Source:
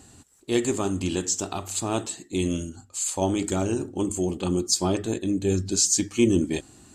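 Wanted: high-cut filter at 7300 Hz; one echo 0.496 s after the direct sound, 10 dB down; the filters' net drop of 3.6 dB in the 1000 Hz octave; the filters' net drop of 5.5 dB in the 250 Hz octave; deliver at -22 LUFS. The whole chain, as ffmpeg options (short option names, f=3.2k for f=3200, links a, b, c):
-af "lowpass=7.3k,equalizer=f=250:t=o:g=-7.5,equalizer=f=1k:t=o:g=-4.5,aecho=1:1:496:0.316,volume=6.5dB"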